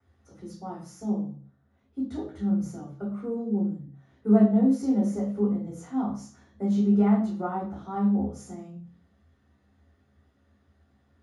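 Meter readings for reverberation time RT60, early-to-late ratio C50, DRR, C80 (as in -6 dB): 0.45 s, 6.0 dB, -10.0 dB, 11.0 dB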